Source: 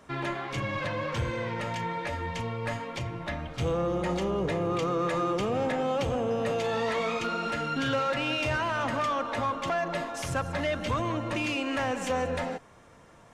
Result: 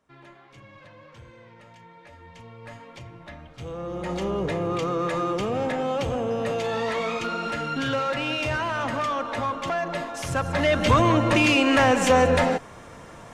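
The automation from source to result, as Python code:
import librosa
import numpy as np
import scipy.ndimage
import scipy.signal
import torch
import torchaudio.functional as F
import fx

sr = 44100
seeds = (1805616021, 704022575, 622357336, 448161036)

y = fx.gain(x, sr, db=fx.line((1.91, -17.0), (2.86, -8.0), (3.66, -8.0), (4.26, 2.0), (10.21, 2.0), (10.91, 11.0)))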